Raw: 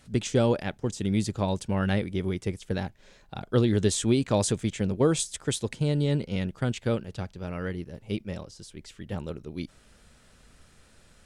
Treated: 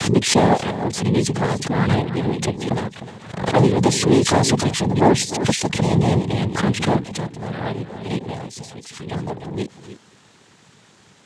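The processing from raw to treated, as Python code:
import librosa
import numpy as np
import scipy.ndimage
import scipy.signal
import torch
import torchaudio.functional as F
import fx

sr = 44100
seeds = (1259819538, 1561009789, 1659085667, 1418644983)

p1 = fx.lowpass(x, sr, hz=3700.0, slope=6, at=(1.91, 3.45))
p2 = fx.noise_vocoder(p1, sr, seeds[0], bands=6)
p3 = p2 + fx.echo_single(p2, sr, ms=305, db=-13.0, dry=0)
p4 = fx.pre_swell(p3, sr, db_per_s=83.0)
y = F.gain(torch.from_numpy(p4), 8.0).numpy()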